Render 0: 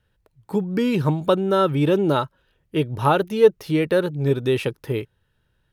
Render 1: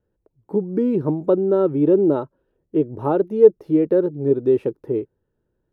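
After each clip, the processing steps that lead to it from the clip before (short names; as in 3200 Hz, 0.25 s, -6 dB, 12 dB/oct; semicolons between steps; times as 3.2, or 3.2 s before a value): EQ curve 130 Hz 0 dB, 350 Hz +13 dB, 3200 Hz -16 dB; gain -7 dB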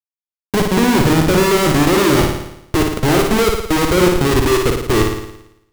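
Schmitt trigger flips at -26.5 dBFS; flutter echo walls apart 9.6 m, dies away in 0.81 s; gain +6 dB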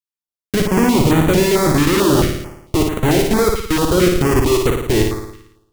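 stepped notch 4.5 Hz 680–5100 Hz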